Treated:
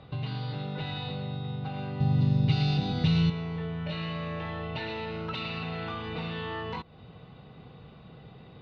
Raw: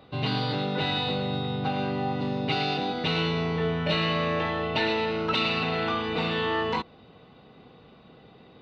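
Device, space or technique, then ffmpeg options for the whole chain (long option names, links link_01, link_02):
jukebox: -filter_complex "[0:a]lowpass=5300,lowshelf=frequency=190:width_type=q:width=1.5:gain=7,acompressor=threshold=-35dB:ratio=3,asettb=1/sr,asplit=3[link_01][link_02][link_03];[link_01]atrim=end=2.004[link_04];[link_02]atrim=start=2:end=3.3,asetpts=PTS-STARTPTS,afade=type=in:duration=0.004:curve=qsin,afade=type=out:start_time=1.296:duration=0.004:curve=qsin,bass=frequency=250:gain=14,treble=frequency=4000:gain=14[link_05];[link_03]atrim=start=3.296[link_06];[link_04][link_05]acrossfade=duration=0.004:curve1=hsin:curve2=qsin[link_07];[link_07][link_06]acrossfade=duration=0.004:curve1=qsin:curve2=hsin"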